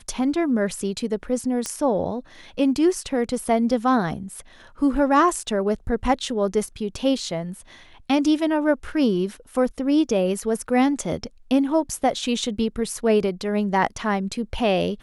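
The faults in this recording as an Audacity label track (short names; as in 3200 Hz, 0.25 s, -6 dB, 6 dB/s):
1.660000	1.660000	pop -12 dBFS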